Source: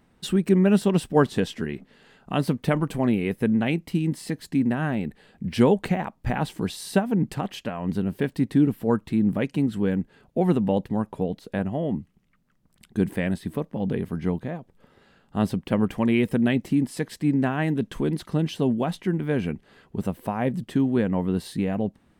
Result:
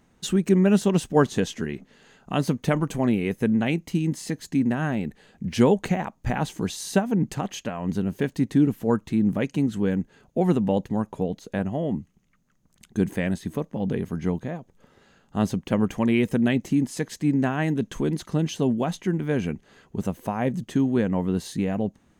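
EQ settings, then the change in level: peaking EQ 6.5 kHz +13.5 dB 0.24 oct; 0.0 dB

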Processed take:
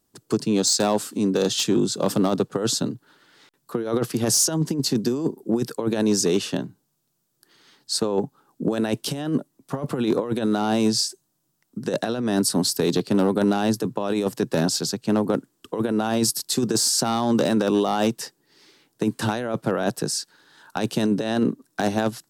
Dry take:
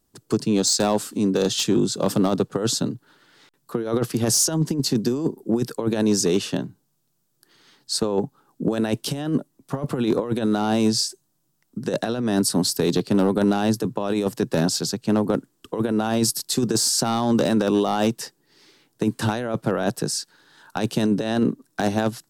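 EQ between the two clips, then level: bass shelf 68 Hz -11 dB; 0.0 dB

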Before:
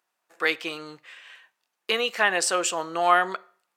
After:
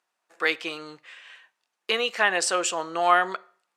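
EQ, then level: low-pass 10 kHz 12 dB/octave; bass shelf 110 Hz -7 dB; 0.0 dB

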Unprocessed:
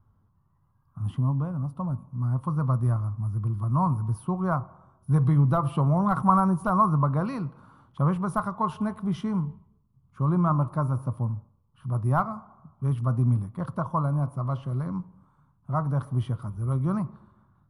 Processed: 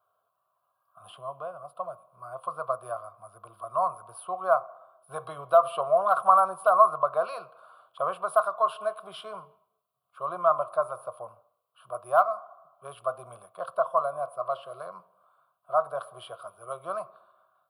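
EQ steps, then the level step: resonant high-pass 690 Hz, resonance Q 4.9; treble shelf 2.7 kHz +8.5 dB; static phaser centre 1.3 kHz, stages 8; 0.0 dB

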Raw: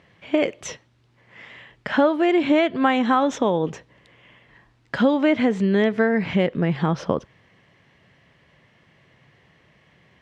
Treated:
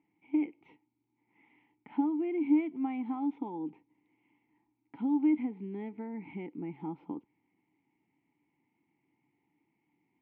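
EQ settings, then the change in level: vowel filter u; distance through air 440 m; band-stop 1.1 kHz, Q 6.8; -4.0 dB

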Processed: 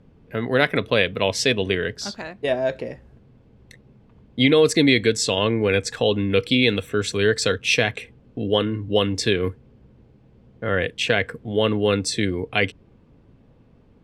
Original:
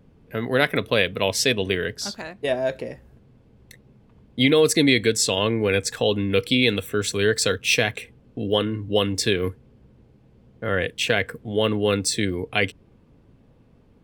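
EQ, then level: distance through air 55 m; +1.5 dB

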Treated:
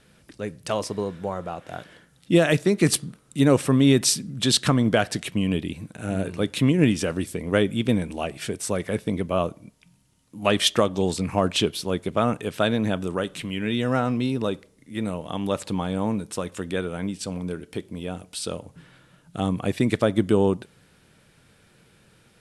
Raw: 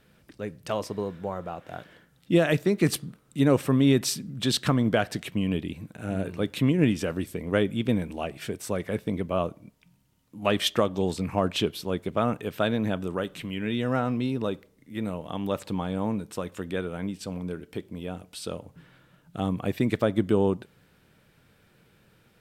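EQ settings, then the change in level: elliptic low-pass 11 kHz, stop band 40 dB; treble shelf 6.5 kHz +8.5 dB; +4.0 dB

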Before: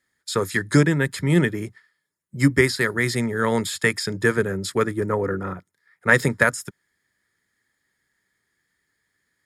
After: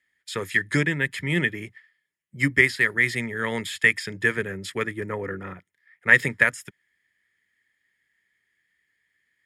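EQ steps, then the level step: high-order bell 2.4 kHz +12 dB 1.1 oct; -7.5 dB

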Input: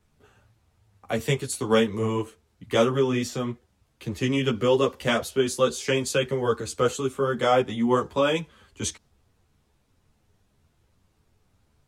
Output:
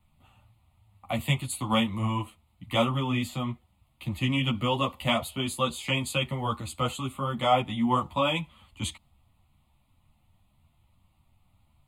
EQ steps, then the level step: static phaser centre 1.6 kHz, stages 6; +2.0 dB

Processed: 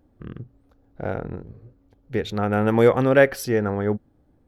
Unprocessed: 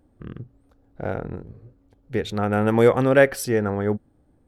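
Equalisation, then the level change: peaking EQ 8.7 kHz -9.5 dB 0.36 oct; 0.0 dB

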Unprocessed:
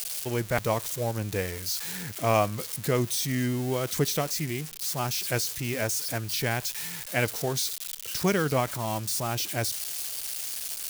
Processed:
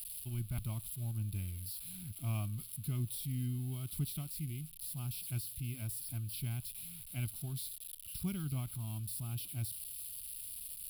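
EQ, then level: amplifier tone stack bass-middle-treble 10-0-1; peaking EQ 11 kHz +13 dB 0.3 oct; static phaser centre 1.8 kHz, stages 6; +7.5 dB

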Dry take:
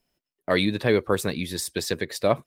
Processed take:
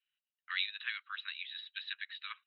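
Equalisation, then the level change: steep high-pass 1.5 kHz 48 dB/octave; rippled Chebyshev low-pass 4 kHz, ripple 9 dB; 0.0 dB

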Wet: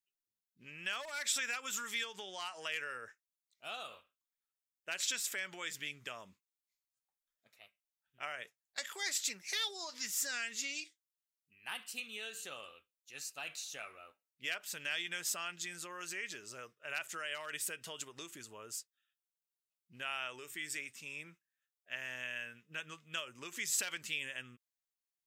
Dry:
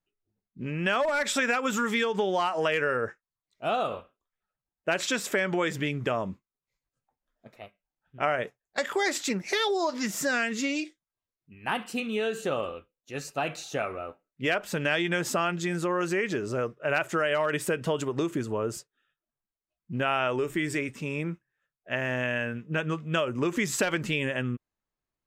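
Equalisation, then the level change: pre-emphasis filter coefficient 0.8; tilt shelf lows -9.5 dB, about 1.2 kHz; treble shelf 5.6 kHz -9.5 dB; -3.5 dB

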